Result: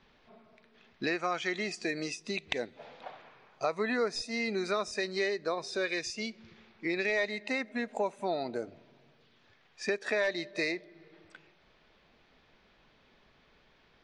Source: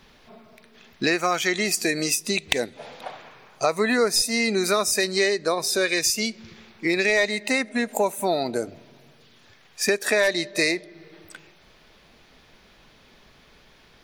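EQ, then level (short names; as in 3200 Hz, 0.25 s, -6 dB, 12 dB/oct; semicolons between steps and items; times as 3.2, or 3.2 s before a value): steep low-pass 11000 Hz 96 dB/oct; air absorption 150 m; low shelf 230 Hz -3.5 dB; -8.0 dB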